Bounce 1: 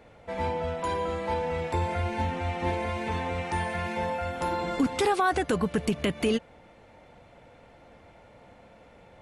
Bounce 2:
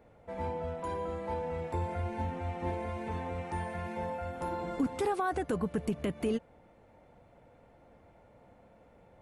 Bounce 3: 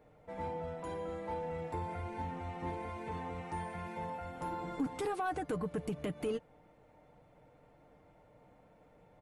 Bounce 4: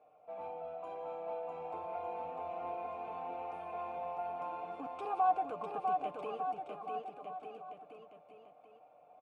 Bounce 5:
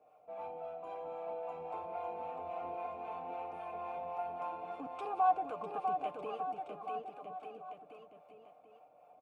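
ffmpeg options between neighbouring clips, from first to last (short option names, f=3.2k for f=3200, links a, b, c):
-af "equalizer=f=3.9k:t=o:w=2.6:g=-9.5,volume=-5dB"
-af "aecho=1:1:6.6:0.43,asoftclip=type=tanh:threshold=-23dB,volume=-3.5dB"
-filter_complex "[0:a]asplit=3[a][b][c];[a]bandpass=f=730:t=q:w=8,volume=0dB[d];[b]bandpass=f=1.09k:t=q:w=8,volume=-6dB[e];[c]bandpass=f=2.44k:t=q:w=8,volume=-9dB[f];[d][e][f]amix=inputs=3:normalize=0,aecho=1:1:650|1202|1672|2071|2411:0.631|0.398|0.251|0.158|0.1,volume=8.5dB"
-filter_complex "[0:a]acrossover=split=510[a][b];[a]aeval=exprs='val(0)*(1-0.5/2+0.5/2*cos(2*PI*3.7*n/s))':c=same[c];[b]aeval=exprs='val(0)*(1-0.5/2-0.5/2*cos(2*PI*3.7*n/s))':c=same[d];[c][d]amix=inputs=2:normalize=0,volume=2dB"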